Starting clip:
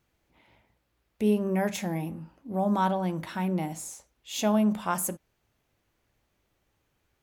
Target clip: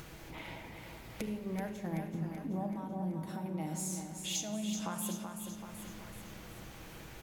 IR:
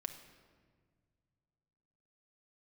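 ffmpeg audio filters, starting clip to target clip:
-filter_complex "[0:a]acompressor=mode=upward:threshold=-39dB:ratio=2.5,alimiter=limit=-23dB:level=0:latency=1:release=317,asettb=1/sr,asplit=3[a][b][c];[a]atrim=end=1.264[d];[b]atrim=start=1.26:end=2.14,asetpts=PTS-STARTPTS,afade=t=in:d=0.004:c=qsin,afade=t=out:st=0.876:d=0.004:c=qsin,agate=range=-16dB:threshold=-31dB:ratio=16:detection=peak[e];[c]atrim=start=2.136[f];[d][e]acrossfade=d=0.004:c1=hsin:c2=qsin[g];[g][f]acrossfade=d=0.004:c1=qsin:c2=hsin,asettb=1/sr,asplit=3[h][i][j];[h]atrim=end=4.354[k];[i]atrim=start=4.35:end=4.86,asetpts=PTS-STARTPTS,afade=t=in:d=0.004:c=qsin,afade=t=out:st=0.506:d=0.004:c=qsin,equalizer=f=400:t=o:w=0.67:g=-4,equalizer=f=1k:t=o:w=0.67:g=-11,equalizer=f=6.3k:t=o:w=0.67:g=12[l];[j]atrim=start=4.856[m];[k][l]acrossfade=d=0.004:c1=hsin:c2=qsin[n];[n][m]acrossfade=d=0.004:c1=qsin:c2=hsin,acompressor=threshold=-41dB:ratio=6,asettb=1/sr,asplit=3[o][p][q];[o]atrim=end=2.664[r];[p]atrim=start=2.66:end=3.46,asetpts=PTS-STARTPTS,afade=t=in:d=0.004:c=qsin,afade=t=out:st=0.796:d=0.004:c=qsin,equalizer=f=2.4k:w=0.44:g=-14.5[s];[q]atrim=start=3.456[t];[r][s]acrossfade=d=0.004:c1=hsin:c2=qsin[u];[u][t]acrossfade=d=0.004:c1=qsin:c2=hsin,aecho=1:1:381|762|1143|1524|1905|2286|2667:0.447|0.241|0.13|0.0703|0.038|0.0205|0.0111[v];[1:a]atrim=start_sample=2205,asetrate=39249,aresample=44100[w];[v][w]afir=irnorm=-1:irlink=0,volume=6.5dB"

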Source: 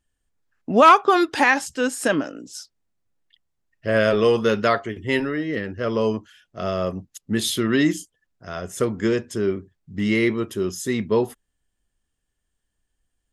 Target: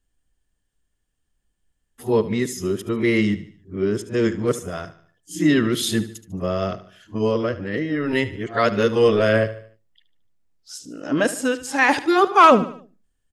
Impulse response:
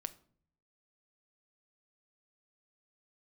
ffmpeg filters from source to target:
-filter_complex "[0:a]areverse,aecho=1:1:74|148|222|296:0.178|0.0765|0.0329|0.0141,asplit=2[a][b];[1:a]atrim=start_sample=2205,afade=t=out:st=0.26:d=0.01,atrim=end_sample=11907,lowshelf=f=420:g=8.5[c];[b][c]afir=irnorm=-1:irlink=0,volume=-7.5dB[d];[a][d]amix=inputs=2:normalize=0,volume=-2.5dB"

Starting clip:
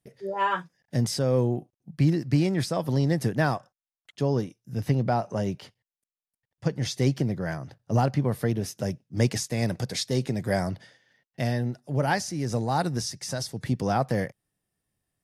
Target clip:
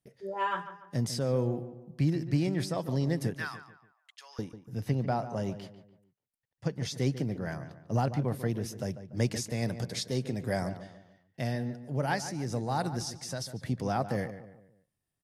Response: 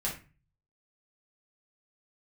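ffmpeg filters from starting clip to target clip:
-filter_complex "[0:a]asettb=1/sr,asplit=3[a][b][c];[a]atrim=end=3.344[d];[b]atrim=start=3.34:end=4.39,asetpts=PTS-STARTPTS,afade=t=in:d=0.004:c=qsin,afade=t=out:st=1.046:d=0.004:c=qsin,highpass=f=1.2k:w=0.5412,highpass=f=1.2k:w=1.3066[e];[c]atrim=start=4.386[f];[d][e]acrossfade=d=0.004:c1=hsin:c2=qsin[g];[g][f]acrossfade=d=0.004:c1=qsin:c2=hsin,asplit=2[h][i];[i]adelay=145,lowpass=f=2.3k:p=1,volume=-11.5dB,asplit=2[j][k];[k]adelay=145,lowpass=f=2.3k:p=1,volume=0.41,asplit=2[l][m];[m]adelay=145,lowpass=f=2.3k:p=1,volume=0.41,asplit=2[n][o];[o]adelay=145,lowpass=f=2.3k:p=1,volume=0.41[p];[h][j][l][n][p]amix=inputs=5:normalize=0,volume=-5.5dB"

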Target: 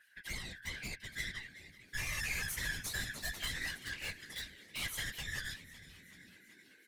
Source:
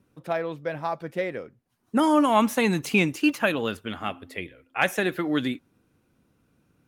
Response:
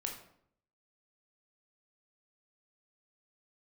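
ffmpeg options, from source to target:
-filter_complex "[0:a]afftfilt=real='real(if(lt(b,272),68*(eq(floor(b/68),0)*3+eq(floor(b/68),1)*0+eq(floor(b/68),2)*1+eq(floor(b/68),3)*2)+mod(b,68),b),0)':imag='imag(if(lt(b,272),68*(eq(floor(b/68),0)*3+eq(floor(b/68),1)*0+eq(floor(b/68),2)*1+eq(floor(b/68),3)*2)+mod(b,68),b),0)':win_size=2048:overlap=0.75,acrossover=split=2100[a][b];[a]aeval=exprs='val(0)*(1-0.5/2+0.5/2*cos(2*PI*5.3*n/s))':c=same[c];[b]aeval=exprs='val(0)*(1-0.5/2-0.5/2*cos(2*PI*5.3*n/s))':c=same[d];[c][d]amix=inputs=2:normalize=0,aeval=exprs='(tanh(39.8*val(0)+0.75)-tanh(0.75))/39.8':c=same,acompressor=threshold=-53dB:ratio=2,aresample=32000,aresample=44100,acontrast=38,asplit=2[e][f];[f]asplit=6[g][h][i][j][k][l];[g]adelay=380,afreqshift=85,volume=-16.5dB[m];[h]adelay=760,afreqshift=170,volume=-20.5dB[n];[i]adelay=1140,afreqshift=255,volume=-24.5dB[o];[j]adelay=1520,afreqshift=340,volume=-28.5dB[p];[k]adelay=1900,afreqshift=425,volume=-32.6dB[q];[l]adelay=2280,afreqshift=510,volume=-36.6dB[r];[m][n][o][p][q][r]amix=inputs=6:normalize=0[s];[e][s]amix=inputs=2:normalize=0,aeval=exprs='0.0224*(abs(mod(val(0)/0.0224+3,4)-2)-1)':c=same,highshelf=f=6.8k:g=7,bandreject=f=1.8k:w=16,asplit=2[t][u];[u]adelay=12,volume=-3.5dB[v];[t][v]amix=inputs=2:normalize=0,afftfilt=real='hypot(re,im)*cos(2*PI*random(0))':imag='hypot(re,im)*sin(2*PI*random(1))':win_size=512:overlap=0.75,volume=5.5dB"

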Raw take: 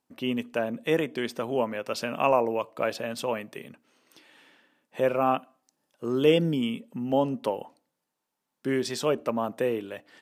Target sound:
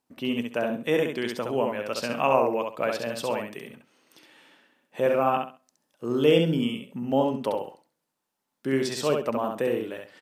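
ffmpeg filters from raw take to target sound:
-af "aecho=1:1:67|134|201:0.631|0.145|0.0334"

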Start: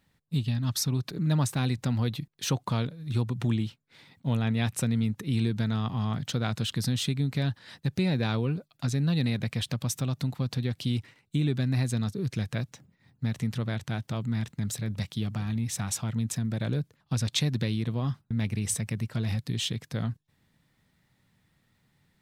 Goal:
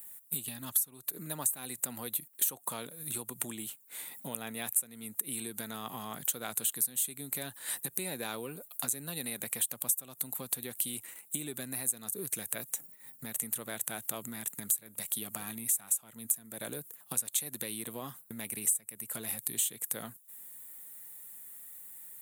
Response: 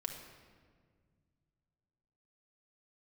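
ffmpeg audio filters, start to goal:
-af "aexciter=amount=14.9:drive=9.3:freq=7.9k,acompressor=threshold=-33dB:ratio=10,highpass=380,volume=5dB"

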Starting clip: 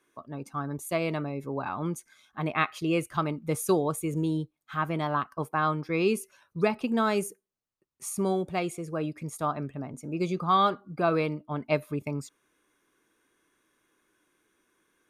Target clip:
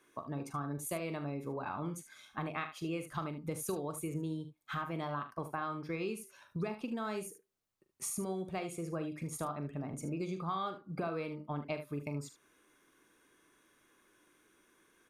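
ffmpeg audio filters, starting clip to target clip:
-filter_complex "[0:a]acompressor=threshold=-39dB:ratio=6,asplit=2[a][b];[b]aecho=0:1:42|75:0.299|0.266[c];[a][c]amix=inputs=2:normalize=0,volume=2.5dB"

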